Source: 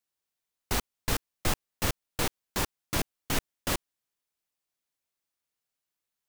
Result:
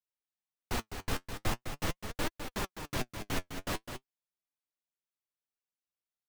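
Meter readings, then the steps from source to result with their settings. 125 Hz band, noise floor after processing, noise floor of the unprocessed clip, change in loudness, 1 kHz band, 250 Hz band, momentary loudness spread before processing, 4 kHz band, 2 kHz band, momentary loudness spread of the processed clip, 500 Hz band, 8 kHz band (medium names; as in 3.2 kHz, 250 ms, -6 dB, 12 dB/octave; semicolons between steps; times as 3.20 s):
-4.0 dB, under -85 dBFS, under -85 dBFS, -5.5 dB, -3.5 dB, -3.0 dB, 2 LU, -6.0 dB, -4.0 dB, 2 LU, -3.5 dB, -9.0 dB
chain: treble shelf 4.9 kHz -7.5 dB; on a send: delay 206 ms -6.5 dB; on the sum: flange 0.43 Hz, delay 2.7 ms, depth 8.8 ms, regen +55%; in parallel at -3 dB: saturation -36 dBFS, distortion -7 dB; on the sum: upward expansion 1.5:1, over -49 dBFS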